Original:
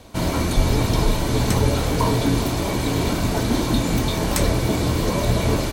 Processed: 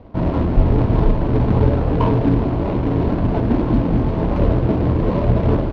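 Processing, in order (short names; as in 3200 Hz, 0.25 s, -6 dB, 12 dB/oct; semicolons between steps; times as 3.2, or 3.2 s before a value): median filter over 25 samples; air absorption 290 m; gain +4.5 dB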